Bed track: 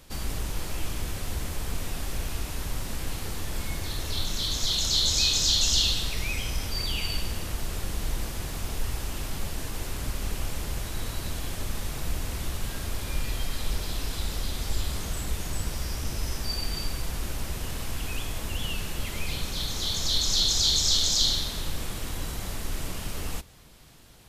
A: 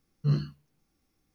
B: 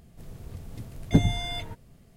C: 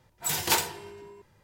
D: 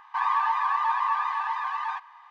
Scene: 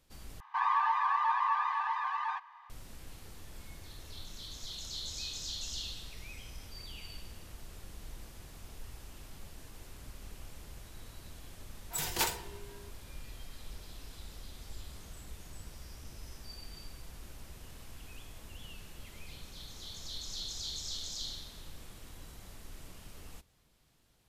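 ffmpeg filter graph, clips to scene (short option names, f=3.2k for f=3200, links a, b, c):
-filter_complex "[0:a]volume=-17dB,asplit=2[a][b];[a]atrim=end=0.404[c];[4:a]atrim=end=2.3,asetpts=PTS-STARTPTS,volume=-4.5dB[d];[b]atrim=start=2.696[e];[3:a]atrim=end=1.43,asetpts=PTS-STARTPTS,volume=-7dB,afade=t=in:d=0.004:c=hsin,afade=t=out:st=1.426:d=0.004:c=hsin,adelay=11690[f];[c][d]acrossfade=d=0.004:c1=hsin:c2=hsin[g];[g][e]acrossfade=d=0.004:c1=hsin:c2=hsin[h];[h][f]amix=inputs=2:normalize=0"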